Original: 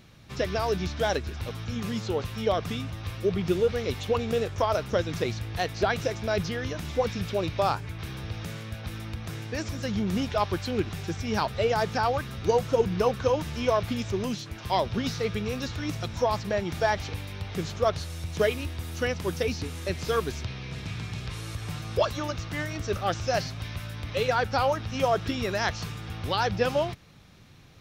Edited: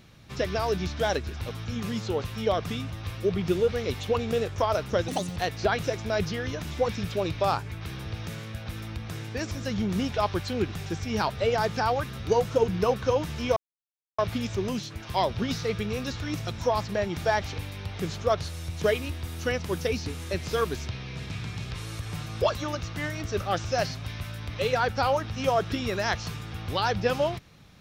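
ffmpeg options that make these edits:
-filter_complex "[0:a]asplit=4[s0][s1][s2][s3];[s0]atrim=end=5.084[s4];[s1]atrim=start=5.08:end=5.54,asetpts=PTS-STARTPTS,asetrate=71442,aresample=44100,atrim=end_sample=12522,asetpts=PTS-STARTPTS[s5];[s2]atrim=start=5.536:end=13.74,asetpts=PTS-STARTPTS,afade=t=out:st=8.2:d=0.004:c=hsin,apad=pad_dur=0.62[s6];[s3]atrim=start=13.74,asetpts=PTS-STARTPTS,afade=t=in:d=0.004:c=hsin[s7];[s4][s5]acrossfade=d=0.004:c1=hsin:c2=hsin[s8];[s6][s7]concat=n=2:v=0:a=1[s9];[s8][s9]acrossfade=d=0.004:c1=hsin:c2=hsin"

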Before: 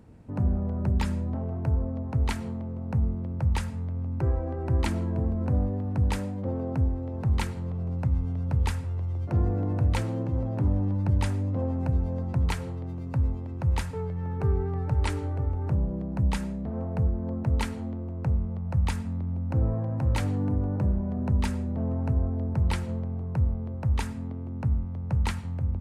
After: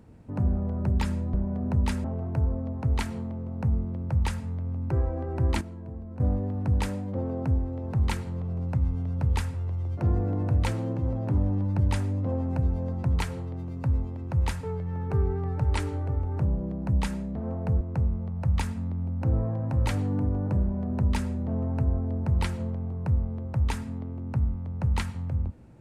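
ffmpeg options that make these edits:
-filter_complex "[0:a]asplit=6[s0][s1][s2][s3][s4][s5];[s0]atrim=end=1.342[s6];[s1]atrim=start=20.898:end=21.602[s7];[s2]atrim=start=1.338:end=4.912[s8];[s3]atrim=start=4.908:end=5.502,asetpts=PTS-STARTPTS,volume=0.266[s9];[s4]atrim=start=5.498:end=17.112[s10];[s5]atrim=start=18.098[s11];[s6][s7]acrossfade=d=0.004:c1=hsin:c2=hsin[s12];[s12][s8]acrossfade=d=0.004:c1=hsin:c2=hsin[s13];[s13][s9]acrossfade=d=0.004:c1=hsin:c2=hsin[s14];[s14][s10]acrossfade=d=0.004:c1=hsin:c2=hsin[s15];[s15][s11]acrossfade=d=0.004:c1=hsin:c2=hsin"

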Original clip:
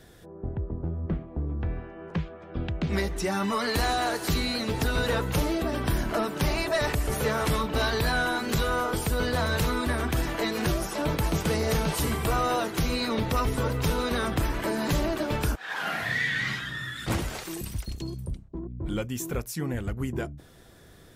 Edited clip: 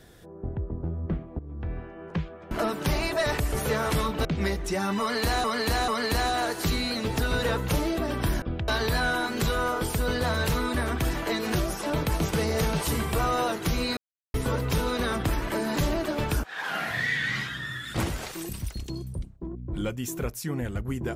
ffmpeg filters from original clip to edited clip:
-filter_complex "[0:a]asplit=10[s0][s1][s2][s3][s4][s5][s6][s7][s8][s9];[s0]atrim=end=1.39,asetpts=PTS-STARTPTS,afade=t=out:st=1.386:d=0.004:c=hsin:silence=0.177828[s10];[s1]atrim=start=1.39:end=2.512,asetpts=PTS-STARTPTS,afade=t=in:d=0.41:silence=0.177828[s11];[s2]atrim=start=6.058:end=7.802[s12];[s3]atrim=start=2.768:end=3.962[s13];[s4]atrim=start=3.518:end=3.962[s14];[s5]atrim=start=3.518:end=6.062[s15];[s6]atrim=start=2.508:end=2.772[s16];[s7]atrim=start=7.798:end=13.09,asetpts=PTS-STARTPTS,afade=t=out:st=5.288:d=0.004:c=hsin[s17];[s8]atrim=start=13.09:end=13.46,asetpts=PTS-STARTPTS,volume=0[s18];[s9]atrim=start=13.46,asetpts=PTS-STARTPTS,afade=t=in:d=0.004:c=hsin[s19];[s10][s11]concat=n=2:v=0:a=1[s20];[s20][s12]acrossfade=d=0.004:c1=hsin:c2=hsin[s21];[s21][s13]acrossfade=d=0.004:c1=hsin:c2=hsin[s22];[s22][s14]acrossfade=d=0.004:c1=hsin:c2=hsin[s23];[s23][s15]acrossfade=d=0.004:c1=hsin:c2=hsin[s24];[s24][s16]acrossfade=d=0.004:c1=hsin:c2=hsin[s25];[s17][s18][s19]concat=n=3:v=0:a=1[s26];[s25][s26]acrossfade=d=0.004:c1=hsin:c2=hsin"

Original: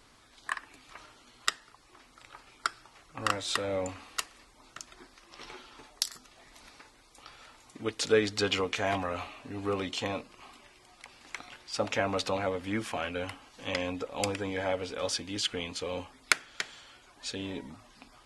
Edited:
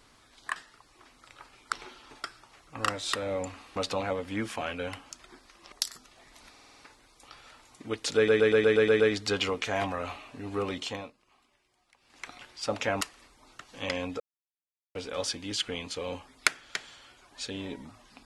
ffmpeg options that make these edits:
-filter_complex "[0:a]asplit=25[s0][s1][s2][s3][s4][s5][s6][s7][s8][s9][s10][s11][s12][s13][s14][s15][s16][s17][s18][s19][s20][s21][s22][s23][s24];[s0]atrim=end=0.562[s25];[s1]atrim=start=1.498:end=2.662[s26];[s2]atrim=start=5.398:end=5.922[s27];[s3]atrim=start=2.658:end=4.182[s28];[s4]atrim=start=12.118:end=13.472[s29];[s5]atrim=start=4.788:end=5.402[s30];[s6]atrim=start=5.918:end=6.762[s31];[s7]atrim=start=6.708:end=6.762[s32];[s8]atrim=start=6.708:end=6.762[s33];[s9]atrim=start=6.708:end=6.762[s34];[s10]atrim=start=6.708:end=6.762[s35];[s11]atrim=start=6.708:end=8.232[s36];[s12]atrim=start=8.108:end=8.232[s37];[s13]atrim=start=8.108:end=8.232[s38];[s14]atrim=start=8.108:end=8.232[s39];[s15]atrim=start=8.108:end=8.232[s40];[s16]atrim=start=8.108:end=8.232[s41];[s17]atrim=start=8.108:end=8.232[s42];[s18]atrim=start=8.108:end=10.24,asetpts=PTS-STARTPTS,afade=t=out:st=1.822:d=0.31:silence=0.188365[s43];[s19]atrim=start=10.24:end=11.11,asetpts=PTS-STARTPTS,volume=0.188[s44];[s20]atrim=start=11.11:end=12.122,asetpts=PTS-STARTPTS,afade=t=in:d=0.31:silence=0.188365[s45];[s21]atrim=start=4.178:end=4.792[s46];[s22]atrim=start=13.468:end=14.05,asetpts=PTS-STARTPTS,afade=t=out:st=0.578:d=0.004:c=hsin[s47];[s23]atrim=start=14.05:end=14.8,asetpts=PTS-STARTPTS,volume=0[s48];[s24]atrim=start=14.8,asetpts=PTS-STARTPTS,afade=t=in:d=0.004:c=hsin[s49];[s25][s26]acrossfade=d=0.004:c1=hsin:c2=hsin[s50];[s50][s27]acrossfade=d=0.004:c1=hsin:c2=hsin[s51];[s51][s28]acrossfade=d=0.004:c1=hsin:c2=hsin[s52];[s52][s29]acrossfade=d=0.004:c1=hsin:c2=hsin[s53];[s53][s30]acrossfade=d=0.004:c1=hsin:c2=hsin[s54];[s54][s31]acrossfade=d=0.004:c1=hsin:c2=hsin[s55];[s55][s32]acrossfade=d=0.004:c1=hsin:c2=hsin[s56];[s56][s33]acrossfade=d=0.004:c1=hsin:c2=hsin[s57];[s57][s34]acrossfade=d=0.004:c1=hsin:c2=hsin[s58];[s58][s35]acrossfade=d=0.004:c1=hsin:c2=hsin[s59];[s59][s36]acrossfade=d=0.004:c1=hsin:c2=hsin[s60];[s60][s37]acrossfade=d=0.004:c1=hsin:c2=hsin[s61];[s61][s38]acrossfade=d=0.004:c1=hsin:c2=hsin[s62];[s62][s39]acrossfade=d=0.004:c1=hsin:c2=hsin[s63];[s63][s40]acrossfade=d=0.004:c1=hsin:c2=hsin[s64];[s64][s41]acrossfade=d=0.004:c1=hsin:c2=hsin[s65];[s65][s42]acrossfade=d=0.004:c1=hsin:c2=hsin[s66];[s43][s44][s45]concat=n=3:v=0:a=1[s67];[s66][s67]acrossfade=d=0.004:c1=hsin:c2=hsin[s68];[s68][s46]acrossfade=d=0.004:c1=hsin:c2=hsin[s69];[s47][s48][s49]concat=n=3:v=0:a=1[s70];[s69][s70]acrossfade=d=0.004:c1=hsin:c2=hsin"

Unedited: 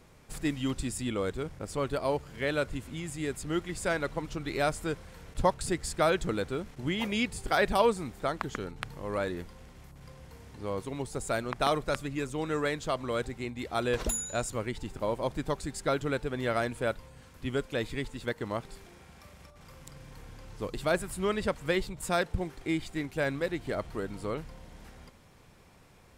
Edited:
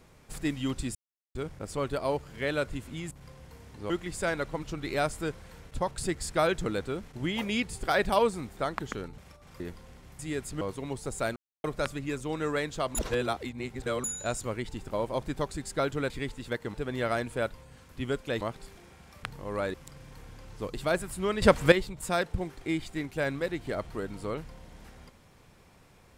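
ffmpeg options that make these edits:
-filter_complex "[0:a]asplit=21[s0][s1][s2][s3][s4][s5][s6][s7][s8][s9][s10][s11][s12][s13][s14][s15][s16][s17][s18][s19][s20];[s0]atrim=end=0.95,asetpts=PTS-STARTPTS,afade=t=out:st=0.946:d=0.004:c=hsin[s21];[s1]atrim=start=0.95:end=1.35,asetpts=PTS-STARTPTS,volume=0[s22];[s2]atrim=start=1.35:end=3.112,asetpts=PTS-STARTPTS,afade=t=in:d=0.004:c=hsin[s23];[s3]atrim=start=9.908:end=10.702[s24];[s4]atrim=start=3.528:end=5.5,asetpts=PTS-STARTPTS,afade=t=out:st=1.692:d=0.28:silence=0.501187[s25];[s5]atrim=start=5.5:end=8.812,asetpts=PTS-STARTPTS,afade=t=in:d=0.004:c=hsin:silence=0.501187[s26];[s6]atrim=start=19.318:end=19.742[s27];[s7]atrim=start=9.318:end=9.912[s28];[s8]atrim=start=3.108:end=3.532[s29];[s9]atrim=start=10.698:end=11.45,asetpts=PTS-STARTPTS,afade=t=out:st=0.748:d=0.004:c=hsin[s30];[s10]atrim=start=11.45:end=11.73,asetpts=PTS-STARTPTS,volume=0[s31];[s11]atrim=start=11.73:end=13.042,asetpts=PTS-STARTPTS,afade=t=in:d=0.004:c=hsin[s32];[s12]atrim=start=13.038:end=14.132,asetpts=PTS-STARTPTS,areverse[s33];[s13]atrim=start=14.128:end=16.192[s34];[s14]atrim=start=17.858:end=18.502[s35];[s15]atrim=start=16.188:end=17.862[s36];[s16]atrim=start=18.498:end=19.322[s37];[s17]atrim=start=8.808:end=9.322[s38];[s18]atrim=start=19.738:end=21.422[s39];[s19]atrim=start=21.418:end=21.722,asetpts=PTS-STARTPTS,volume=3.35[s40];[s20]atrim=start=21.718[s41];[s21][s22][s23]concat=n=3:v=0:a=1[s42];[s42][s24]acrossfade=d=0.004:c1=hsin:c2=hsin[s43];[s25][s26]concat=n=2:v=0:a=1[s44];[s43][s44]acrossfade=d=0.004:c1=hsin:c2=hsin[s45];[s45][s27]acrossfade=d=0.004:c1=hsin:c2=hsin[s46];[s46][s28]acrossfade=d=0.004:c1=hsin:c2=hsin[s47];[s47][s29]acrossfade=d=0.004:c1=hsin:c2=hsin[s48];[s30][s31][s32]concat=n=3:v=0:a=1[s49];[s48][s49]acrossfade=d=0.004:c1=hsin:c2=hsin[s50];[s50][s33]acrossfade=d=0.004:c1=hsin:c2=hsin[s51];[s51][s34]acrossfade=d=0.004:c1=hsin:c2=hsin[s52];[s52][s35]acrossfade=d=0.004:c1=hsin:c2=hsin[s53];[s53][s36]acrossfade=d=0.004:c1=hsin:c2=hsin[s54];[s54][s37]acrossfade=d=0.004:c1=hsin:c2=hsin[s55];[s55][s38]acrossfade=d=0.004:c1=hsin:c2=hsin[s56];[s56][s39]acrossfade=d=0.004:c1=hsin:c2=hsin[s57];[s57][s40]acrossfade=d=0.004:c1=hsin:c2=hsin[s58];[s58][s41]acrossfade=d=0.004:c1=hsin:c2=hsin"

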